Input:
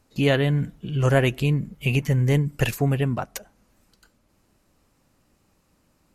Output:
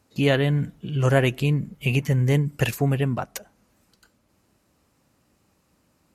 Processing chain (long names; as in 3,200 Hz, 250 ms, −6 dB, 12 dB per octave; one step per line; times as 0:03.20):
high-pass filter 59 Hz